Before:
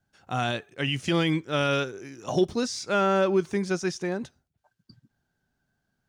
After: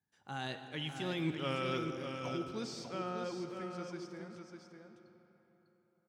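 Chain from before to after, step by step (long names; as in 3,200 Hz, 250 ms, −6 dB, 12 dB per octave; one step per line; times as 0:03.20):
source passing by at 0:01.27, 26 m/s, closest 1.8 metres
reversed playback
downward compressor 6 to 1, threshold −47 dBFS, peak gain reduction 22 dB
reversed playback
high-pass filter 79 Hz
notch filter 620 Hz, Q 17
single-tap delay 599 ms −7 dB
on a send at −7.5 dB: convolution reverb RT60 4.0 s, pre-delay 20 ms
on the sum: level +12 dB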